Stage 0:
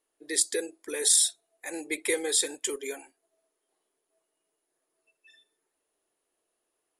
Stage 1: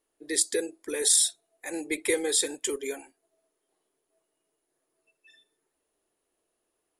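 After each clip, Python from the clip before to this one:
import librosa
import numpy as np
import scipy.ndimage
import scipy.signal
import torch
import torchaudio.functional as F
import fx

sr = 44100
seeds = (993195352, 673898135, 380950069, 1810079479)

y = fx.low_shelf(x, sr, hz=290.0, db=8.0)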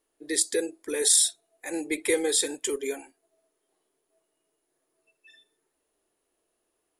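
y = fx.hpss(x, sr, part='harmonic', gain_db=3)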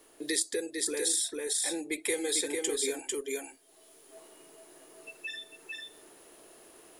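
y = fx.rider(x, sr, range_db=10, speed_s=2.0)
y = y + 10.0 ** (-4.5 / 20.0) * np.pad(y, (int(448 * sr / 1000.0), 0))[:len(y)]
y = fx.band_squash(y, sr, depth_pct=70)
y = y * librosa.db_to_amplitude(-5.0)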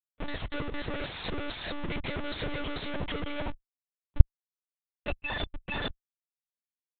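y = fx.schmitt(x, sr, flips_db=-41.5)
y = fx.hpss(y, sr, part='harmonic', gain_db=-5)
y = fx.lpc_monotone(y, sr, seeds[0], pitch_hz=290.0, order=10)
y = y * librosa.db_to_amplitude(6.0)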